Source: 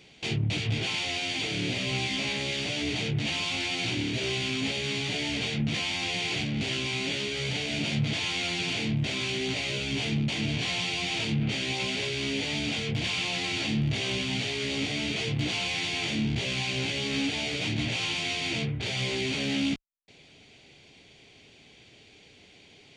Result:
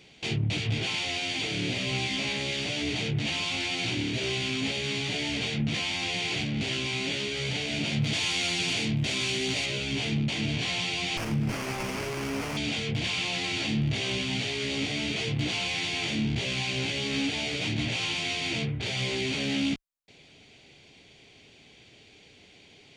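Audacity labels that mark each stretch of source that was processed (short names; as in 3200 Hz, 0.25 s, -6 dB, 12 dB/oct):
8.010000	9.660000	high shelf 5800 Hz +9.5 dB
11.170000	12.570000	running maximum over 9 samples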